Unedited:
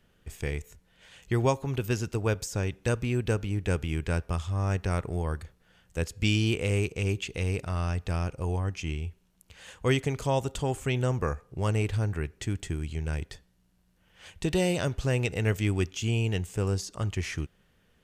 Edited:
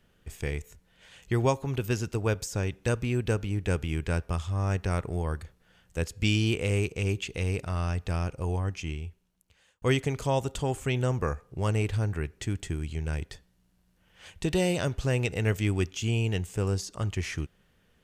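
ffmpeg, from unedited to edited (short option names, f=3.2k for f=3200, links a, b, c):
-filter_complex "[0:a]asplit=2[a][b];[a]atrim=end=9.82,asetpts=PTS-STARTPTS,afade=t=out:st=8.7:d=1.12[c];[b]atrim=start=9.82,asetpts=PTS-STARTPTS,afade=t=in:d=0.004:c=hsin[d];[c][d]concat=n=2:v=0:a=1"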